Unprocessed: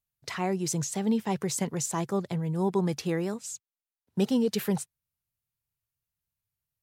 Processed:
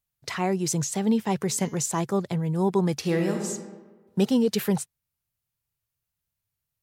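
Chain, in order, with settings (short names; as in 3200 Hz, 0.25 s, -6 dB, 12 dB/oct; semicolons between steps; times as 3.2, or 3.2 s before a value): 1.43–1.83 de-hum 210.8 Hz, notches 33; 2.99–3.48 reverb throw, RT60 1.3 s, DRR 2 dB; gain +3.5 dB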